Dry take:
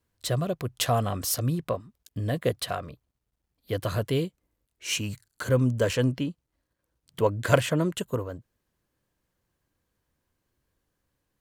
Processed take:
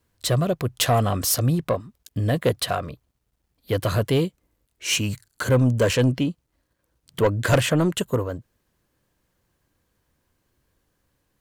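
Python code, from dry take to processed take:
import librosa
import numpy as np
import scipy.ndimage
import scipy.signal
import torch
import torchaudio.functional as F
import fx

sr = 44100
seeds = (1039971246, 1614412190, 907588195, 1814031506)

y = 10.0 ** (-18.5 / 20.0) * np.tanh(x / 10.0 ** (-18.5 / 20.0))
y = F.gain(torch.from_numpy(y), 7.0).numpy()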